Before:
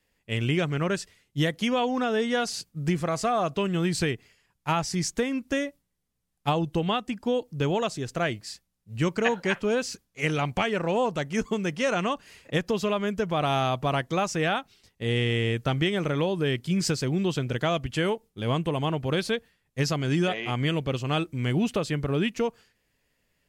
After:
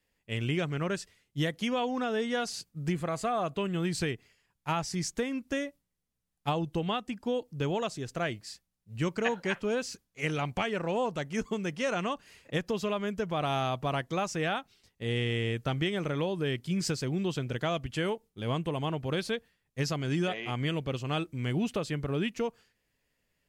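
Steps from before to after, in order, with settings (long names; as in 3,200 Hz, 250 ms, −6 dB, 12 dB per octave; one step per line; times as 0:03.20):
0:02.92–0:03.85: parametric band 5,500 Hz −9.5 dB 0.3 octaves
level −5 dB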